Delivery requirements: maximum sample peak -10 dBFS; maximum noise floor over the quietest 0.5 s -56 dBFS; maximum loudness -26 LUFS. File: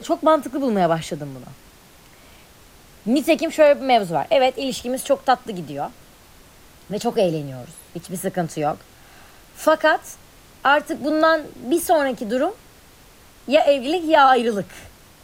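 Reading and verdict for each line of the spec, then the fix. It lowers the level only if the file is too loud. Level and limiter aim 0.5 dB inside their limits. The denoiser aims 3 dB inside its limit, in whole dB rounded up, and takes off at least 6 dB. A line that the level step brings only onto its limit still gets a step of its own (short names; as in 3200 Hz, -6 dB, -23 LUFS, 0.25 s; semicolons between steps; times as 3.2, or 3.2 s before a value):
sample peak -4.0 dBFS: fail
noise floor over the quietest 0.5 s -48 dBFS: fail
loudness -20.0 LUFS: fail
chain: denoiser 6 dB, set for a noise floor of -48 dBFS; gain -6.5 dB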